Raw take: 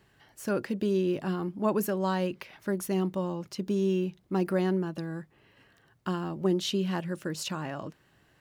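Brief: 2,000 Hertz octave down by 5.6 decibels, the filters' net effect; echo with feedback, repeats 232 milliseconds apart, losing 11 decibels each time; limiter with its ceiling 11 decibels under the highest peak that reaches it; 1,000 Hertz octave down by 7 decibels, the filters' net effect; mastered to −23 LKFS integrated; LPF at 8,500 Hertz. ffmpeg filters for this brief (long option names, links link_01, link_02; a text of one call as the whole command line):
ffmpeg -i in.wav -af "lowpass=8500,equalizer=frequency=1000:width_type=o:gain=-8,equalizer=frequency=2000:width_type=o:gain=-4.5,alimiter=level_in=4.5dB:limit=-24dB:level=0:latency=1,volume=-4.5dB,aecho=1:1:232|464|696:0.282|0.0789|0.0221,volume=14dB" out.wav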